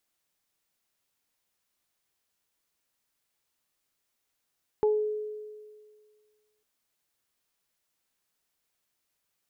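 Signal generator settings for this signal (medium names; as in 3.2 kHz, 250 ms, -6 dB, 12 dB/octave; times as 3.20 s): additive tone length 1.80 s, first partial 425 Hz, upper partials -9.5 dB, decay 1.86 s, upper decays 0.29 s, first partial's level -19.5 dB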